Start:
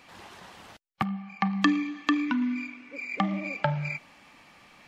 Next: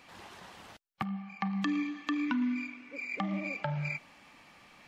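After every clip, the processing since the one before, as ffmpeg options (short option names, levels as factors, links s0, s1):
-af "alimiter=limit=0.119:level=0:latency=1:release=152,volume=0.75"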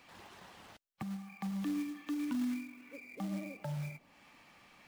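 -filter_complex "[0:a]acrossover=split=710[s0][s1];[s1]acompressor=threshold=0.00398:ratio=6[s2];[s0][s2]amix=inputs=2:normalize=0,acrusher=bits=4:mode=log:mix=0:aa=0.000001,volume=0.631"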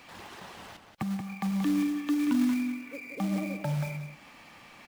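-filter_complex "[0:a]asplit=2[s0][s1];[s1]adelay=180.8,volume=0.447,highshelf=f=4000:g=-4.07[s2];[s0][s2]amix=inputs=2:normalize=0,volume=2.66"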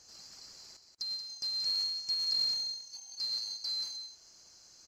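-af "afftfilt=real='real(if(lt(b,736),b+184*(1-2*mod(floor(b/184),2)),b),0)':imag='imag(if(lt(b,736),b+184*(1-2*mod(floor(b/184),2)),b),0)':win_size=2048:overlap=0.75,lowpass=11000,volume=0.501"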